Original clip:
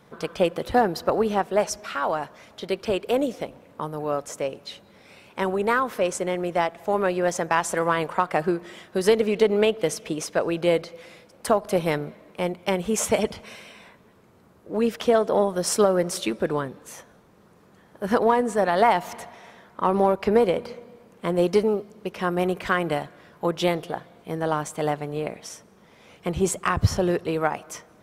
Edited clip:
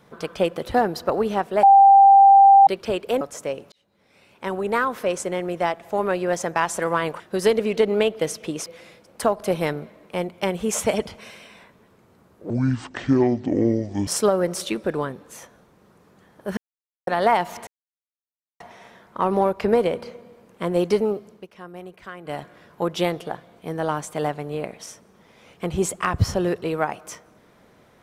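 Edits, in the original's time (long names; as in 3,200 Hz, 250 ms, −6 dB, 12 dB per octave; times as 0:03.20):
0:01.63–0:02.67: beep over 789 Hz −7.5 dBFS
0:03.21–0:04.16: remove
0:04.67–0:05.70: fade in
0:08.15–0:08.82: remove
0:10.28–0:10.91: remove
0:14.75–0:15.63: play speed 56%
0:18.13–0:18.63: silence
0:19.23: splice in silence 0.93 s
0:21.93–0:23.04: duck −15 dB, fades 0.17 s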